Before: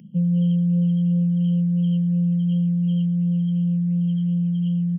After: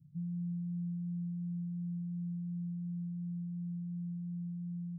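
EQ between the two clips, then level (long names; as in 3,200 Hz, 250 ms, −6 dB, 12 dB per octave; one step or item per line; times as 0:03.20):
inverse Chebyshev band-stop filter 560–2,700 Hz, stop band 70 dB
high-frequency loss of the air 490 metres
phaser with its sweep stopped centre 490 Hz, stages 4
+1.5 dB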